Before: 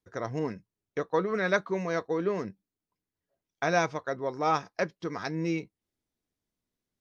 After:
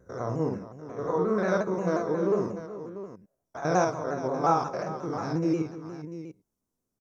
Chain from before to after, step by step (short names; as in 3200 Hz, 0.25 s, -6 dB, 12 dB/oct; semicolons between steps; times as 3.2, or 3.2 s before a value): stepped spectrum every 0.1 s; band shelf 2800 Hz -12 dB; tapped delay 51/66/195/429/693 ms -4.5/-12.5/-19.5/-13.5/-12 dB; shaped vibrato saw down 5.6 Hz, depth 100 cents; gain +3.5 dB